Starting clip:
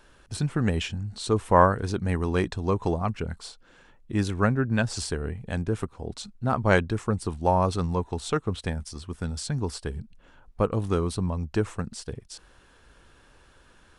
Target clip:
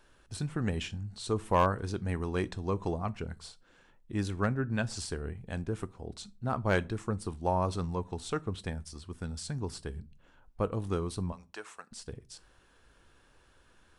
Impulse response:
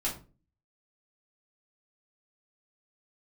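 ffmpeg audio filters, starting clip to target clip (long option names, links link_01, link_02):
-filter_complex "[0:a]asettb=1/sr,asplit=3[link_01][link_02][link_03];[link_01]atrim=end=11.324[link_04];[link_02]atrim=start=11.32:end=11.91,asetpts=PTS-STARTPTS,afade=type=in:duration=0.004:curve=qsin,afade=type=out:start_time=0.586:duration=0.004:curve=qsin,highpass=830[link_05];[link_03]atrim=start=11.906[link_06];[link_04][link_05]acrossfade=duration=0.004:curve1=hsin:curve2=qsin[link_07];[link_07][link_06]acrossfade=duration=0.004:curve1=qsin:curve2=hsin,asplit=2[link_08][link_09];[1:a]atrim=start_sample=2205,highshelf=frequency=4200:gain=9[link_10];[link_09][link_10]afir=irnorm=-1:irlink=0,volume=-21.5dB[link_11];[link_08][link_11]amix=inputs=2:normalize=0,asoftclip=type=hard:threshold=-8.5dB,volume=-7.5dB"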